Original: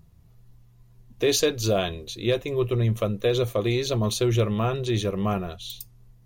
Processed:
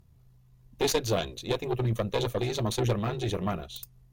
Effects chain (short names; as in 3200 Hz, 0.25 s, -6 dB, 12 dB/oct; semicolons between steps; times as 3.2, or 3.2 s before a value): added harmonics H 4 -12 dB, 6 -27 dB, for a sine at -11 dBFS; granular stretch 0.66×, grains 36 ms; gain -3.5 dB